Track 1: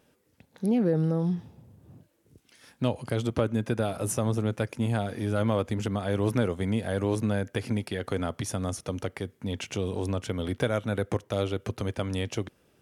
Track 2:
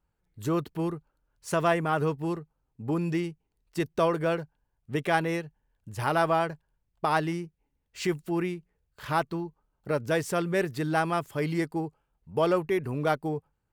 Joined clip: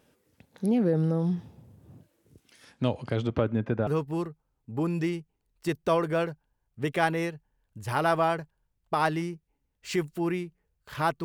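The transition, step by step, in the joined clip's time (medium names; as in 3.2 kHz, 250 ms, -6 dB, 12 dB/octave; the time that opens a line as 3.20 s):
track 1
2.64–3.87 s: low-pass 8.8 kHz -> 1.6 kHz
3.87 s: go over to track 2 from 1.98 s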